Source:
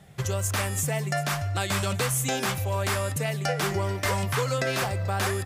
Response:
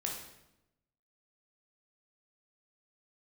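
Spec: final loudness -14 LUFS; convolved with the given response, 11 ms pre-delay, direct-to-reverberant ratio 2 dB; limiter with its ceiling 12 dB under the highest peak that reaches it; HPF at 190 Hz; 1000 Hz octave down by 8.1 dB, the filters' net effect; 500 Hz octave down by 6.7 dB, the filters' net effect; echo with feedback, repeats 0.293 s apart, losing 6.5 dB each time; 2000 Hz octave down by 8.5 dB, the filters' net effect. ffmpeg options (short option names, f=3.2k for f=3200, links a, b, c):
-filter_complex "[0:a]highpass=190,equalizer=f=500:t=o:g=-6,equalizer=f=1k:t=o:g=-6.5,equalizer=f=2k:t=o:g=-8.5,alimiter=level_in=4dB:limit=-24dB:level=0:latency=1,volume=-4dB,aecho=1:1:293|586|879|1172|1465|1758:0.473|0.222|0.105|0.0491|0.0231|0.0109,asplit=2[a][b];[1:a]atrim=start_sample=2205,adelay=11[c];[b][c]afir=irnorm=-1:irlink=0,volume=-3.5dB[d];[a][d]amix=inputs=2:normalize=0,volume=20dB"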